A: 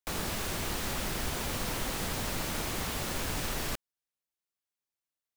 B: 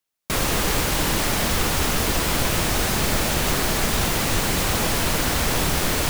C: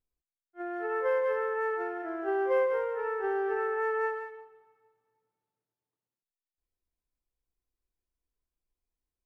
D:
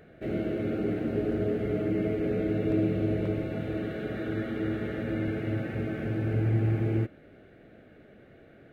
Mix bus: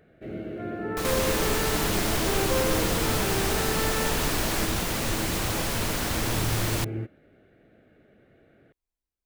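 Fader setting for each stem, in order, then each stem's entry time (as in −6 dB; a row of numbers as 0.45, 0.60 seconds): +2.0, −6.5, −2.0, −5.0 decibels; 0.90, 0.75, 0.00, 0.00 seconds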